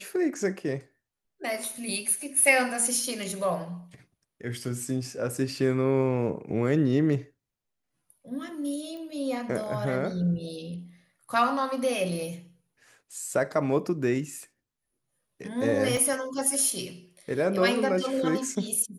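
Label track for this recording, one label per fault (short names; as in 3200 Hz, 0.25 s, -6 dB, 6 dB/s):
8.970000	8.970000	pop -30 dBFS
15.970000	15.970000	gap 2.2 ms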